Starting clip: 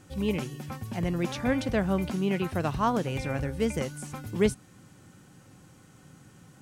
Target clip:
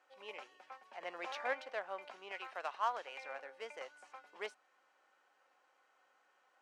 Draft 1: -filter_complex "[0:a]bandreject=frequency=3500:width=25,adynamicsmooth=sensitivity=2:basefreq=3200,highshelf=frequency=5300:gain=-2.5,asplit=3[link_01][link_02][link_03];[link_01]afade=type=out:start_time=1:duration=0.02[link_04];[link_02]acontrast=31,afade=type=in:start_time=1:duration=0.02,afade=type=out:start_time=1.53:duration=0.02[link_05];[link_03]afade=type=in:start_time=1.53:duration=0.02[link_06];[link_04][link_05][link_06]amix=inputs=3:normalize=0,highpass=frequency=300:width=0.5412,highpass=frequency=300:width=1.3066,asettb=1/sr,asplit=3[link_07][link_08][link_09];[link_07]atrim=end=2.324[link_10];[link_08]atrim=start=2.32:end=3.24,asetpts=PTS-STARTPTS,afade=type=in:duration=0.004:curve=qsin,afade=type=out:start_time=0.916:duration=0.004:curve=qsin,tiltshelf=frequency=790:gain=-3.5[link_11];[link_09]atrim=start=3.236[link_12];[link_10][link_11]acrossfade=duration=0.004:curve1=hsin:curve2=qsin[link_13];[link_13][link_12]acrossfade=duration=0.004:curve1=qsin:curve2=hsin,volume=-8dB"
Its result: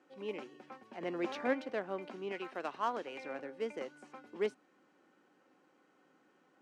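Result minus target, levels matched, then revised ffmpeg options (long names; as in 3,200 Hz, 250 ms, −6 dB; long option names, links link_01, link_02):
250 Hz band +16.5 dB
-filter_complex "[0:a]bandreject=frequency=3500:width=25,adynamicsmooth=sensitivity=2:basefreq=3200,highshelf=frequency=5300:gain=-2.5,asplit=3[link_01][link_02][link_03];[link_01]afade=type=out:start_time=1:duration=0.02[link_04];[link_02]acontrast=31,afade=type=in:start_time=1:duration=0.02,afade=type=out:start_time=1.53:duration=0.02[link_05];[link_03]afade=type=in:start_time=1.53:duration=0.02[link_06];[link_04][link_05][link_06]amix=inputs=3:normalize=0,highpass=frequency=610:width=0.5412,highpass=frequency=610:width=1.3066,asettb=1/sr,asplit=3[link_07][link_08][link_09];[link_07]atrim=end=2.324[link_10];[link_08]atrim=start=2.32:end=3.24,asetpts=PTS-STARTPTS,afade=type=in:duration=0.004:curve=qsin,afade=type=out:start_time=0.916:duration=0.004:curve=qsin,tiltshelf=frequency=790:gain=-3.5[link_11];[link_09]atrim=start=3.236[link_12];[link_10][link_11]acrossfade=duration=0.004:curve1=hsin:curve2=qsin[link_13];[link_13][link_12]acrossfade=duration=0.004:curve1=qsin:curve2=hsin,volume=-8dB"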